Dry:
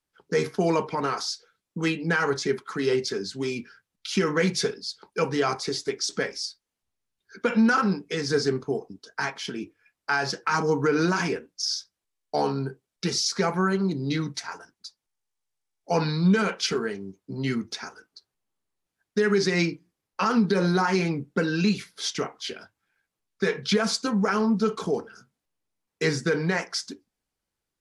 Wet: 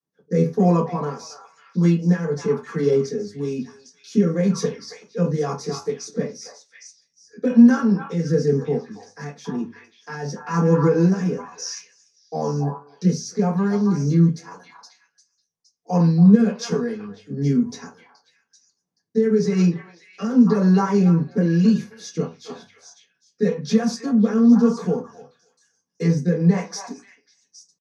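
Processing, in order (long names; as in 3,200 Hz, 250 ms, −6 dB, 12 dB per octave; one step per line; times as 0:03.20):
echo through a band-pass that steps 272 ms, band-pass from 950 Hz, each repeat 1.4 octaves, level −4.5 dB
rotating-speaker cabinet horn 1 Hz
convolution reverb RT60 0.20 s, pre-delay 3 ms, DRR −8.5 dB
pitch shifter +1 semitone
level −17.5 dB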